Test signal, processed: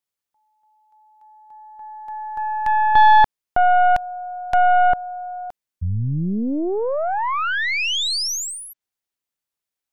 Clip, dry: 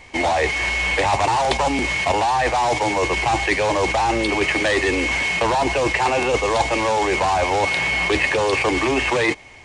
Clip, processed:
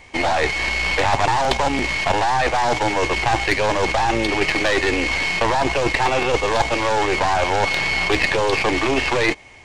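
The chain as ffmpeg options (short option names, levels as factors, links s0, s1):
-filter_complex "[0:a]acrossover=split=7300[s0][s1];[s1]acompressor=threshold=0.00355:ratio=4:attack=1:release=60[s2];[s0][s2]amix=inputs=2:normalize=0,aeval=exprs='0.562*(cos(1*acos(clip(val(0)/0.562,-1,1)))-cos(1*PI/2))+0.158*(cos(2*acos(clip(val(0)/0.562,-1,1)))-cos(2*PI/2))+0.0501*(cos(6*acos(clip(val(0)/0.562,-1,1)))-cos(6*PI/2))+0.01*(cos(7*acos(clip(val(0)/0.562,-1,1)))-cos(7*PI/2))+0.00891*(cos(8*acos(clip(val(0)/0.562,-1,1)))-cos(8*PI/2))':c=same"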